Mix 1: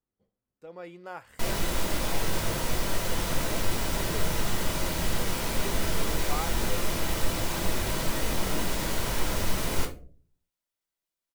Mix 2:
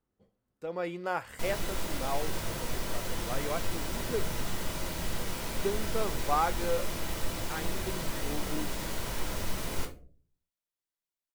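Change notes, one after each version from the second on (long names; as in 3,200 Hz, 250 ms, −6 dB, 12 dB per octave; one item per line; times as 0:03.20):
speech +8.0 dB
background −6.0 dB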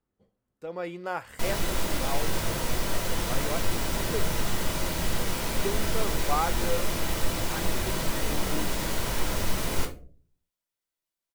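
background +6.0 dB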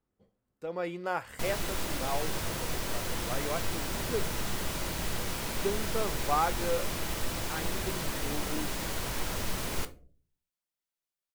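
background: send −10.0 dB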